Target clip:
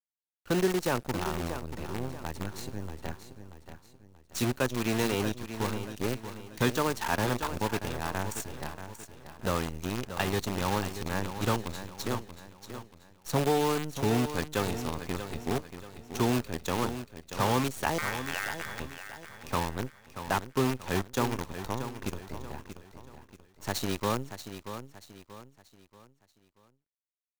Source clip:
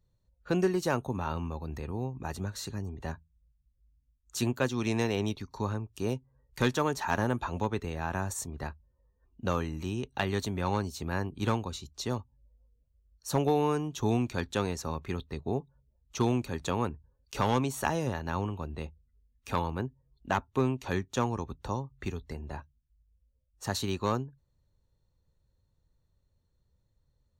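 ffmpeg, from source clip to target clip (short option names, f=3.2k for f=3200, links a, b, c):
-filter_complex "[0:a]asettb=1/sr,asplit=3[a][b][c];[a]atrim=end=17.984[d];[b]atrim=start=17.98:end=18.8,asetpts=PTS-STARTPTS,afade=t=in:d=0.004:c=qsin,afade=t=out:st=0.816:d=0.004:c=qsin,aeval=exprs='val(0)*sin(2*PI*1700*n/s)':c=same[e];[c]atrim=start=18.796[f];[d][e]acrossfade=d=0.004:c1=hsin:c2=qsin[g];[g][f]acrossfade=d=0.004:c1=qsin:c2=hsin,acrusher=bits=6:dc=4:mix=0:aa=0.000001,asplit=2[h][i];[i]aecho=0:1:633|1266|1899|2532:0.299|0.116|0.0454|0.0177[j];[h][j]amix=inputs=2:normalize=0"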